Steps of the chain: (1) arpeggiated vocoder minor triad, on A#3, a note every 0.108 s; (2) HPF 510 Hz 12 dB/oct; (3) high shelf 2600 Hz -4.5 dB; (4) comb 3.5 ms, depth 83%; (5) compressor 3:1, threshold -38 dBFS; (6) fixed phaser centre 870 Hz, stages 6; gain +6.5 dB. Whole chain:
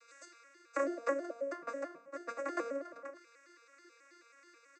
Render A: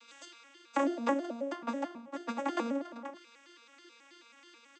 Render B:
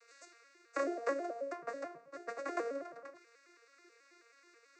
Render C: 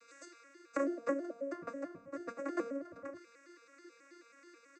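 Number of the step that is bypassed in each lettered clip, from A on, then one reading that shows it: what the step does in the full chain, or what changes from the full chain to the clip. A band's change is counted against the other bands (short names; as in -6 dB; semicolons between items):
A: 6, 4 kHz band +9.0 dB; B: 4, 4 kHz band +2.5 dB; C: 2, 250 Hz band +7.0 dB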